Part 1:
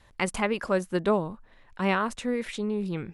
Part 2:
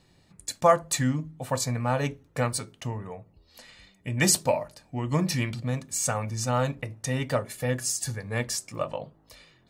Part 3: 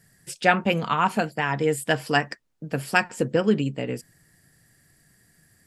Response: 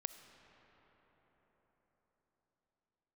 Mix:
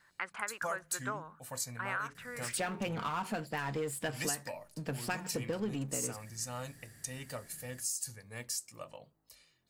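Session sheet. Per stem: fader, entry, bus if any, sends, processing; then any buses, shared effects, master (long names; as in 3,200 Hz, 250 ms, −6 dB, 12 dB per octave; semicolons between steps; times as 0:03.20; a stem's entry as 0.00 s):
+2.5 dB, 0.00 s, no send, resonant band-pass 1,500 Hz, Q 3.7
−3.5 dB, 0.00 s, no send, first-order pre-emphasis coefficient 0.8; notch filter 3,500 Hz, Q 17
−14.0 dB, 2.15 s, no send, power curve on the samples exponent 0.7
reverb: not used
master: downward compressor 6 to 1, threshold −32 dBFS, peak gain reduction 11.5 dB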